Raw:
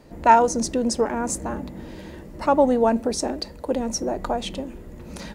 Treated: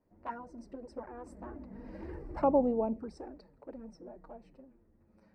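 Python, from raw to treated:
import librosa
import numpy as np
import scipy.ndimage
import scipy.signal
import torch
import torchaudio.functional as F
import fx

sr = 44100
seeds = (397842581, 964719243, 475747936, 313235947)

y = fx.doppler_pass(x, sr, speed_mps=8, closest_m=1.5, pass_at_s=2.17)
y = scipy.signal.lfilter(np.full(13, 1.0 / 13), 1.0, y)
y = fx.env_flanger(y, sr, rest_ms=10.7, full_db=-28.5)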